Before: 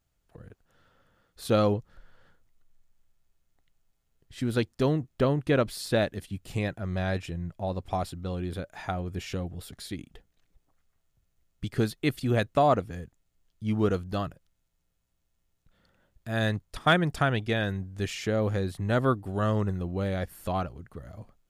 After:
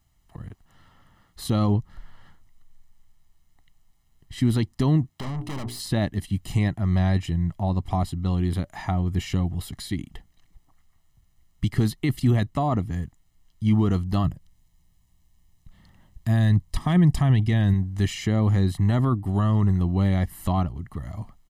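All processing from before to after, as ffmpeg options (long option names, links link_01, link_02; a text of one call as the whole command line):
ffmpeg -i in.wav -filter_complex "[0:a]asettb=1/sr,asplit=3[link_01][link_02][link_03];[link_01]atrim=end=5.094[link_04];[link_02]atrim=start=5.09:end=5.8,asetpts=PTS-STARTPTS,afade=type=in:duration=0.004:curve=qsin,afade=type=out:start_time=0.706:duration=0.004:curve=qsin,highpass=frequency=81:width=0.5412,highpass=frequency=81:width=1.3066,bandreject=frequency=60:width_type=h:width=6,bandreject=frequency=120:width_type=h:width=6,bandreject=frequency=180:width_type=h:width=6,bandreject=frequency=240:width_type=h:width=6,bandreject=frequency=300:width_type=h:width=6,bandreject=frequency=360:width_type=h:width=6,bandreject=frequency=420:width_type=h:width=6,aeval=exprs='(tanh(70.8*val(0)+0.3)-tanh(0.3))/70.8':channel_layout=same[link_05];[link_03]atrim=start=5.796[link_06];[link_04][link_05]acrossfade=duration=0.004:curve1=hsin:curve2=qsin[link_07];[link_07][link_06]acrossfade=duration=0.004:curve1=qsin:curve2=hsin,asettb=1/sr,asplit=3[link_08][link_09][link_10];[link_08]atrim=end=14.244[link_11];[link_09]atrim=start=14.24:end=17.74,asetpts=PTS-STARTPTS,afade=type=in:duration=0.004:curve=qsin,afade=type=out:start_time=3.496:duration=0.004:curve=qsin,bass=frequency=250:gain=5,treble=frequency=4000:gain=2,bandreject=frequency=1400:width=8.4[link_12];[link_10]atrim=start=17.736[link_13];[link_11][link_12]acrossfade=duration=0.004:curve1=hsin:curve2=qsin[link_14];[link_14][link_13]acrossfade=duration=0.004:curve1=qsin:curve2=hsin,aecho=1:1:1:0.7,alimiter=limit=-17.5dB:level=0:latency=1:release=11,acrossover=split=500[link_15][link_16];[link_16]acompressor=threshold=-48dB:ratio=1.5[link_17];[link_15][link_17]amix=inputs=2:normalize=0,volume=6.5dB" out.wav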